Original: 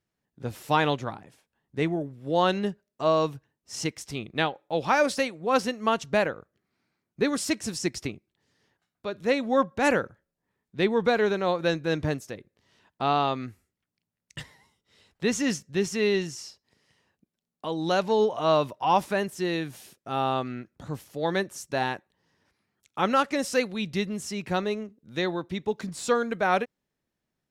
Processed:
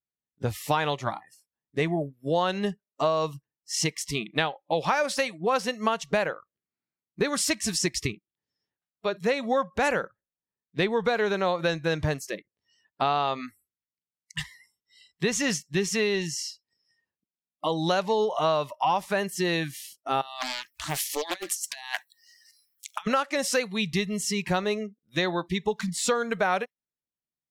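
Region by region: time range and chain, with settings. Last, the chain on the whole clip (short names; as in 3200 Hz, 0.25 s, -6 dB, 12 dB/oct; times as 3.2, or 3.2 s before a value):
20.21–23.07 tilt shelf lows -10 dB, about 1400 Hz + negative-ratio compressor -37 dBFS, ratio -0.5 + Doppler distortion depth 0.93 ms
whole clip: spectral noise reduction 27 dB; dynamic EQ 280 Hz, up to -8 dB, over -41 dBFS, Q 1.5; compressor 6:1, threshold -29 dBFS; gain +7.5 dB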